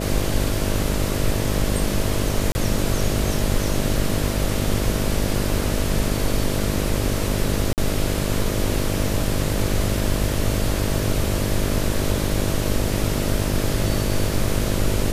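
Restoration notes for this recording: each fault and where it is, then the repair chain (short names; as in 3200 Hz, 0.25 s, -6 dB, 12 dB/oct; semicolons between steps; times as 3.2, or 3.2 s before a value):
buzz 50 Hz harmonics 13 -25 dBFS
2.52–2.55 gap 30 ms
7.73–7.78 gap 48 ms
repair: de-hum 50 Hz, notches 13; interpolate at 2.52, 30 ms; interpolate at 7.73, 48 ms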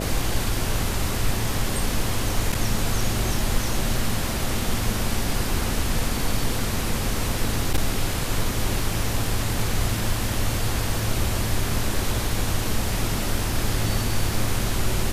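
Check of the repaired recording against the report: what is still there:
none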